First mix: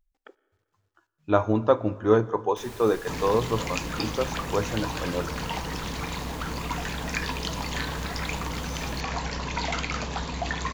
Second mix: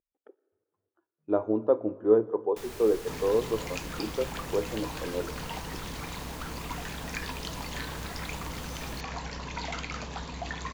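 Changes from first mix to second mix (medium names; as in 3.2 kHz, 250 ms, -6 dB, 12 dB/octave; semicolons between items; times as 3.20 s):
speech: add band-pass filter 400 Hz, Q 1.7; second sound -6.5 dB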